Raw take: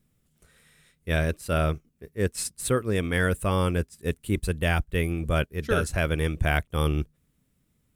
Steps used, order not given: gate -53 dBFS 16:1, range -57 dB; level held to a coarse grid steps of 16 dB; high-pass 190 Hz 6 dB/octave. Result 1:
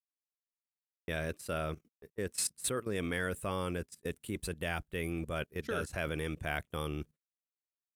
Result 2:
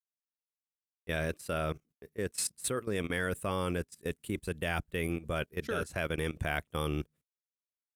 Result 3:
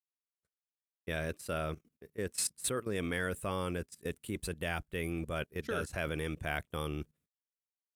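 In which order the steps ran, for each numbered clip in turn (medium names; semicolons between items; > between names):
level held to a coarse grid > high-pass > gate; high-pass > gate > level held to a coarse grid; gate > level held to a coarse grid > high-pass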